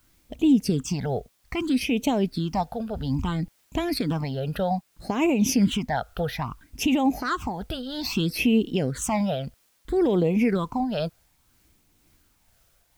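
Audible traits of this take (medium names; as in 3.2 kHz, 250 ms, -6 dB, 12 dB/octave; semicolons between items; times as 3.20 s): phasing stages 8, 0.61 Hz, lowest notch 280–1500 Hz; a quantiser's noise floor 12-bit, dither triangular; tremolo triangle 2 Hz, depth 35%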